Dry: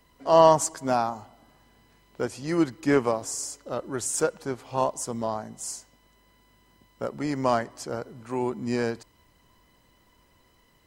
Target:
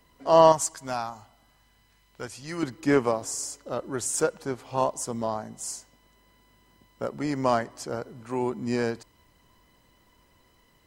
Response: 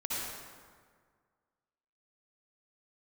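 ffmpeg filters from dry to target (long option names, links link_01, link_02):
-filter_complex "[0:a]asettb=1/sr,asplit=3[link_01][link_02][link_03];[link_01]atrim=end=0.524[link_04];[link_02]atrim=start=0.52:end=2.63,asetpts=PTS-STARTPTS,afade=type=in:duration=0.004:curve=qsin,afade=type=out:start_time=2.106:duration=0.004:curve=qsin,equalizer=frequency=350:width=0.42:gain=-10.5[link_05];[link_03]atrim=start=2.626[link_06];[link_04][link_05]acrossfade=duration=0.004:curve1=hsin:curve2=qsin[link_07];[link_07][link_06]acrossfade=duration=0.004:curve1=qsin:curve2=hsin"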